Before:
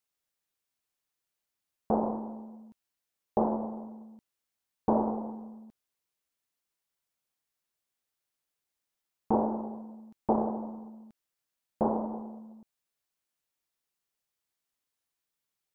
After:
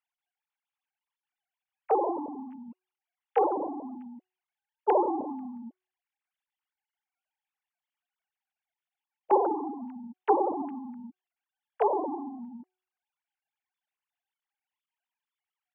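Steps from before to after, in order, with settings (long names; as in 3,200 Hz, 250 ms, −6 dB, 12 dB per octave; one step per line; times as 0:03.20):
three sine waves on the formant tracks
hum removal 370.2 Hz, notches 3
level +3 dB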